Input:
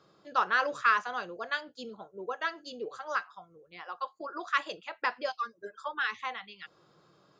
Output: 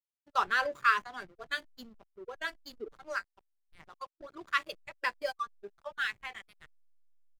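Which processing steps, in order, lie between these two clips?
high shelf 2800 Hz +6 dB; comb 5.1 ms, depth 32%; backlash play -34 dBFS; spectral noise reduction 8 dB; gain -2.5 dB

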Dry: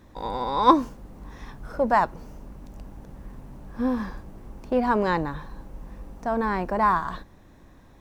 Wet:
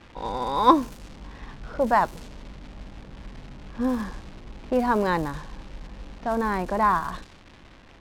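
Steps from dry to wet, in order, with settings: crackle 530/s -34 dBFS; low-pass opened by the level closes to 2600 Hz, open at -21 dBFS

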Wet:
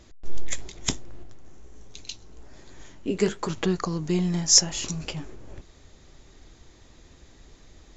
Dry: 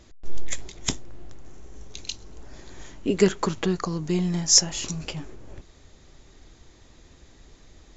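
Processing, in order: 1.23–3.49 flange 1.3 Hz, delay 6.2 ms, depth 9.8 ms, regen -51%

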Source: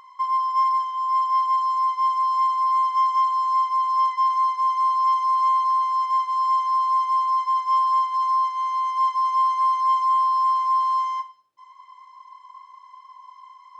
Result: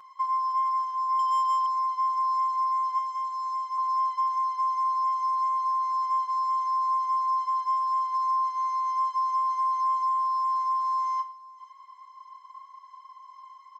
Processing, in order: compressor, threshold -23 dBFS, peak gain reduction 6.5 dB; 2.98–3.78 HPF 1400 Hz 6 dB/oct; echo 0.502 s -20.5 dB; 1.19–1.66 overdrive pedal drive 18 dB, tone 3400 Hz, clips at -19 dBFS; comb 5.6 ms, depth 89%; gain -5.5 dB

